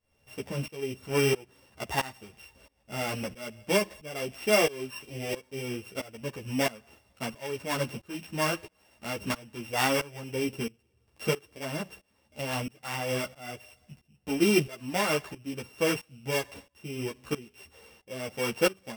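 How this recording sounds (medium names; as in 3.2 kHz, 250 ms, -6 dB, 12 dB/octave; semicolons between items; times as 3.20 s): a buzz of ramps at a fixed pitch in blocks of 16 samples; tremolo saw up 1.5 Hz, depth 95%; a shimmering, thickened sound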